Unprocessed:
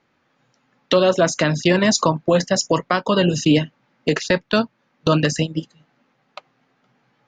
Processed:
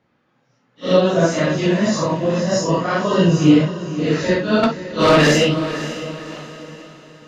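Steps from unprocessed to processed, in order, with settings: phase scrambler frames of 0.2 s; HPF 52 Hz; tilt -1.5 dB/oct; 1.56–2.52 compressor 2:1, threshold -17 dBFS, peak gain reduction 5 dB; 4.63–5.54 overdrive pedal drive 23 dB, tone 3800 Hz, clips at -4.5 dBFS; diffused feedback echo 0.548 s, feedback 42%, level -12 dB

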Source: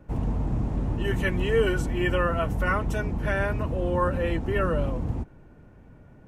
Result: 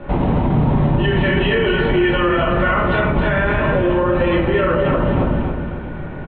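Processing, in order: steep low-pass 3900 Hz 72 dB/oct; low shelf 220 Hz -11 dB; compressor, threshold -37 dBFS, peak gain reduction 15.5 dB; feedback echo 0.271 s, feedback 38%, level -6 dB; shoebox room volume 100 m³, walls mixed, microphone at 1.2 m; maximiser +27 dB; gain -7 dB

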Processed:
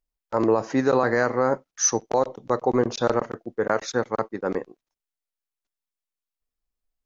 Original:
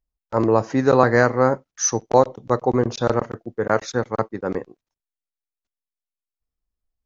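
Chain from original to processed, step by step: bell 79 Hz -10 dB 1.9 oct; limiter -10 dBFS, peak gain reduction 8 dB

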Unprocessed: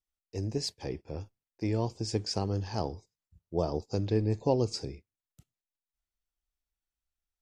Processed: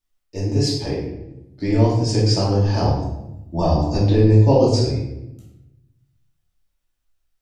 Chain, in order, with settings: 1.05 tape start 0.64 s; 2.84–3.96 comb 1.1 ms, depth 75%; shoebox room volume 320 m³, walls mixed, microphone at 2.6 m; gain +4.5 dB

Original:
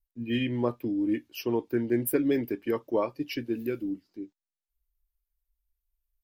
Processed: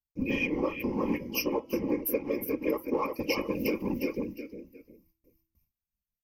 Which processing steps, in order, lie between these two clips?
feedback echo 0.356 s, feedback 28%, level -10.5 dB; in parallel at -5 dB: hard clip -30.5 dBFS, distortion -6 dB; on the sum: ripple EQ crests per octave 0.81, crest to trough 17 dB; compressor 4:1, threshold -27 dBFS, peak gain reduction 12 dB; whisperiser; vocal rider within 3 dB 0.5 s; gate with hold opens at -58 dBFS; comb 3.7 ms, depth 44%; de-hum 326.1 Hz, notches 11

